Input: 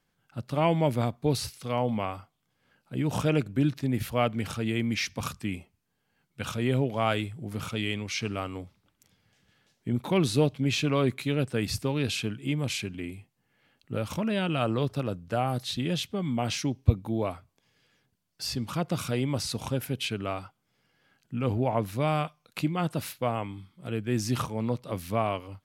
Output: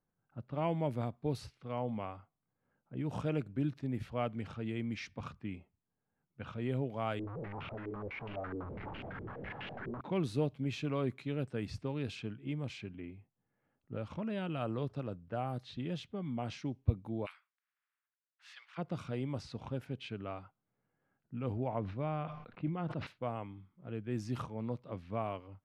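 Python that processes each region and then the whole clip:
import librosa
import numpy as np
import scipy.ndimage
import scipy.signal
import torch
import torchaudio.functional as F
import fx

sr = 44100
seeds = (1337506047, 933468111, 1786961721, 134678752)

y = fx.chain(x, sr, fx.clip_1bit(),
    fx.filter_held_lowpass(hz=12.0, low_hz=380.0, high_hz=2800.0), at=(7.19, 10.01))
y = fx.spec_clip(y, sr, under_db=23, at=(17.25, 18.77), fade=0.02)
y = fx.highpass(y, sr, hz=1400.0, slope=24, at=(17.25, 18.77), fade=0.02)
y = fx.chain(y, sr, fx.air_absorb(metres=250.0),
    fx.sustainer(db_per_s=63.0), at=(21.79, 23.07))
y = fx.env_lowpass(y, sr, base_hz=1400.0, full_db=-22.0)
y = fx.high_shelf(y, sr, hz=3000.0, db=-11.5)
y = y * 10.0 ** (-9.0 / 20.0)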